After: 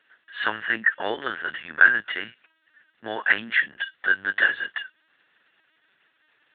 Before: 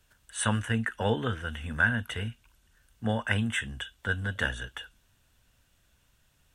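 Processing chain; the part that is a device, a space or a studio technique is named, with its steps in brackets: talking toy (LPC vocoder at 8 kHz pitch kept; high-pass 430 Hz 12 dB/octave; peaking EQ 1.8 kHz +11 dB 0.57 oct); trim +2.5 dB

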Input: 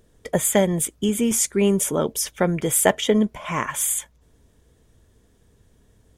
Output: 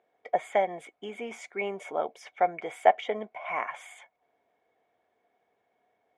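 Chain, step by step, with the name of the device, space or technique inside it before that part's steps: tin-can telephone (band-pass 530–2200 Hz; small resonant body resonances 730/2200 Hz, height 17 dB, ringing for 40 ms); trim -8 dB

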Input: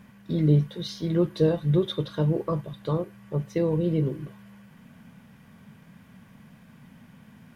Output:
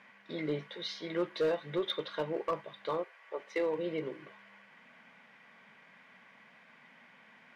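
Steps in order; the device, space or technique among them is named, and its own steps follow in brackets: 3.03–3.77 s: high-pass 610 Hz -> 150 Hz 24 dB/octave; megaphone (band-pass 580–4000 Hz; peaking EQ 2.1 kHz +8 dB 0.37 oct; hard clipper -25 dBFS, distortion -18 dB)

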